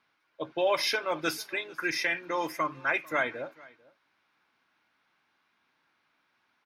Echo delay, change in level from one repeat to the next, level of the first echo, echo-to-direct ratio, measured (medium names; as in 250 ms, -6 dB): 446 ms, no regular repeats, -23.5 dB, -23.5 dB